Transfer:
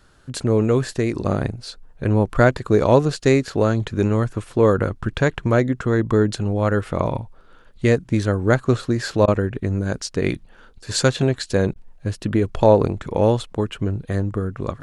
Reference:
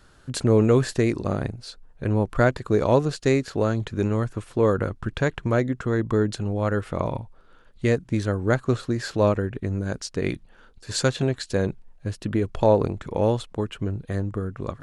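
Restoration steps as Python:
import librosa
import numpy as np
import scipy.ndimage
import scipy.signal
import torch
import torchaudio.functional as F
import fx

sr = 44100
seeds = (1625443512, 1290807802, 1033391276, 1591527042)

y = fx.fix_interpolate(x, sr, at_s=(9.26, 11.74), length_ms=17.0)
y = fx.gain(y, sr, db=fx.steps((0.0, 0.0), (1.14, -4.5)))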